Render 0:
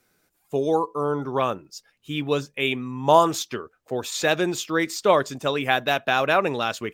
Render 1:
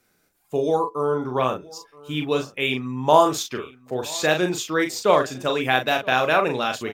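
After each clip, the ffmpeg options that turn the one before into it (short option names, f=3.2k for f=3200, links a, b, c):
-filter_complex "[0:a]asplit=2[a][b];[b]adelay=39,volume=-5.5dB[c];[a][c]amix=inputs=2:normalize=0,aecho=1:1:973:0.0708"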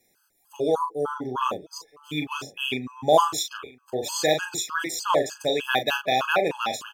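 -af "bass=f=250:g=-5,treble=f=4k:g=5,afftfilt=real='re*gt(sin(2*PI*3.3*pts/sr)*(1-2*mod(floor(b*sr/1024/840),2)),0)':imag='im*gt(sin(2*PI*3.3*pts/sr)*(1-2*mod(floor(b*sr/1024/840),2)),0)':win_size=1024:overlap=0.75"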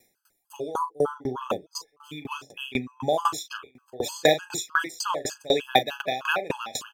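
-af "aeval=exprs='val(0)*pow(10,-25*if(lt(mod(4*n/s,1),2*abs(4)/1000),1-mod(4*n/s,1)/(2*abs(4)/1000),(mod(4*n/s,1)-2*abs(4)/1000)/(1-2*abs(4)/1000))/20)':c=same,volume=6.5dB"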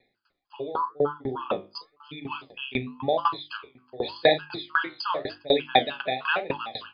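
-af "flanger=delay=6.9:depth=9.1:regen=69:speed=0.91:shape=sinusoidal,bandreject=f=50:t=h:w=6,bandreject=f=100:t=h:w=6,bandreject=f=150:t=h:w=6,bandreject=f=200:t=h:w=6,bandreject=f=250:t=h:w=6,bandreject=f=300:t=h:w=6,bandreject=f=350:t=h:w=6,volume=5dB" -ar 11025 -c:a libmp3lame -b:a 48k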